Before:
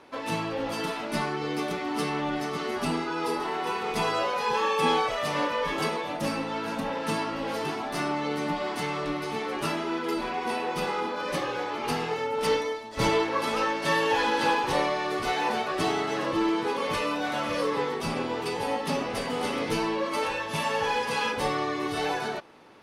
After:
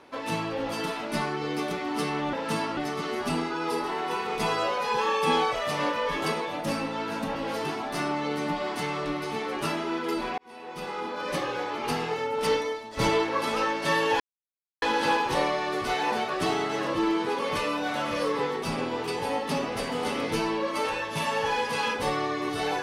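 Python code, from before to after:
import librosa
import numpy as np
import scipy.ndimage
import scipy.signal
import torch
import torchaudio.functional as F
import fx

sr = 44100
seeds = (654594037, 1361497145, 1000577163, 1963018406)

y = fx.edit(x, sr, fx.move(start_s=6.91, length_s=0.44, to_s=2.33),
    fx.fade_in_span(start_s=10.38, length_s=0.95),
    fx.insert_silence(at_s=14.2, length_s=0.62), tone=tone)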